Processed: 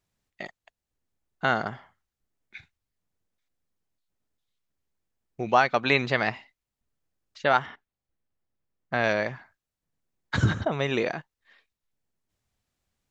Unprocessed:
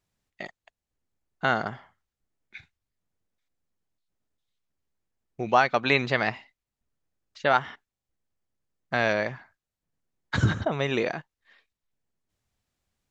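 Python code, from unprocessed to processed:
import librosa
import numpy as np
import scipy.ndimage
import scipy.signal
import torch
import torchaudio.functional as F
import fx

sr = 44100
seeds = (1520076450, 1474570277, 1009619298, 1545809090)

y = fx.high_shelf(x, sr, hz=4800.0, db=-12.0, at=(7.66, 9.04))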